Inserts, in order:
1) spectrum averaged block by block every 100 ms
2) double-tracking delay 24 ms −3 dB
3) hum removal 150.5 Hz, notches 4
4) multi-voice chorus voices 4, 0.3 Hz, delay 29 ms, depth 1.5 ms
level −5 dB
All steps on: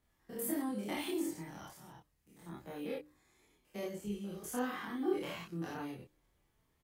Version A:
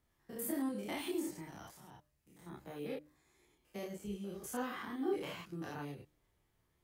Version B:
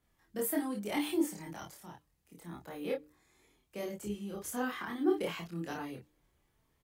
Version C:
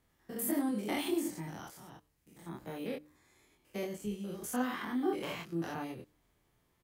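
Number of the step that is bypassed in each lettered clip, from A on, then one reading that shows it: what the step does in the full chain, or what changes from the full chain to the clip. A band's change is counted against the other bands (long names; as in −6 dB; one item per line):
2, change in integrated loudness −1.5 LU
1, 125 Hz band −2.0 dB
4, change in integrated loudness +3.0 LU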